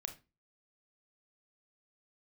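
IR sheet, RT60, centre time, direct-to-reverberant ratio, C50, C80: 0.25 s, 9 ms, 6.0 dB, 12.5 dB, 19.5 dB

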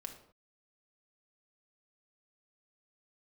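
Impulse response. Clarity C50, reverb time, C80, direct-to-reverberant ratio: 8.5 dB, not exponential, 11.5 dB, 3.5 dB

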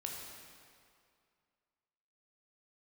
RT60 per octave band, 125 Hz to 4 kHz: 2.1, 2.2, 2.3, 2.3, 2.1, 1.8 s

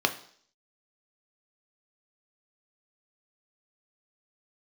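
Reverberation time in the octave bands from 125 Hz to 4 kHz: 0.45, 0.55, 0.60, 0.55, 0.55, 0.65 s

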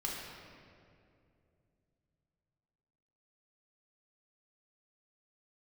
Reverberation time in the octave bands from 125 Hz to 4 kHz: 4.1, 3.3, 2.9, 2.1, 2.0, 1.5 s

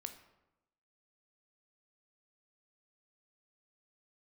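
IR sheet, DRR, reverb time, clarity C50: 7.0 dB, 0.95 s, 10.0 dB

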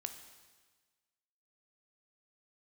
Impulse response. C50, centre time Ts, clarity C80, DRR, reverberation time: 9.0 dB, 19 ms, 10.5 dB, 7.0 dB, 1.4 s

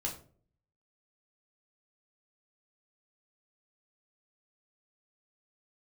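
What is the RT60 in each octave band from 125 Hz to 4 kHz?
0.80, 0.60, 0.55, 0.35, 0.30, 0.25 s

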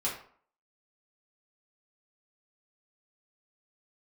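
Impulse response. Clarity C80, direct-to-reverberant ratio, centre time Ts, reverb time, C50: 10.5 dB, -6.5 dB, 31 ms, 0.55 s, 6.0 dB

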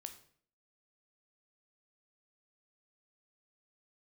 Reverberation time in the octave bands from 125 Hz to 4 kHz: 0.60, 0.65, 0.60, 0.50, 0.50, 0.45 s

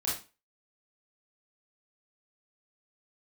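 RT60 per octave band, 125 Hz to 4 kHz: 0.30, 0.35, 0.30, 0.30, 0.30, 0.30 s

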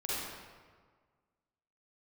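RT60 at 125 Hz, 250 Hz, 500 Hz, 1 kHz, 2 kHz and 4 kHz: 1.8, 1.7, 1.6, 1.6, 1.3, 1.0 s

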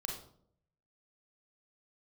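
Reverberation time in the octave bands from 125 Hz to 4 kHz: 0.95, 0.80, 0.75, 0.55, 0.40, 0.40 s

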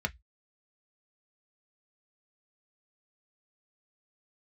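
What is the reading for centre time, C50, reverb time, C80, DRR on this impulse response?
3 ms, 27.5 dB, 0.10 s, 41.0 dB, 5.0 dB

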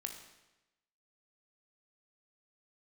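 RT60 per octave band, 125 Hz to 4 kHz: 1.0, 1.0, 1.0, 0.95, 1.0, 0.90 s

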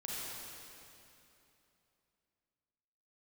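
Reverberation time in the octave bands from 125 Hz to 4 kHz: 3.3, 3.2, 3.0, 2.9, 2.7, 2.6 s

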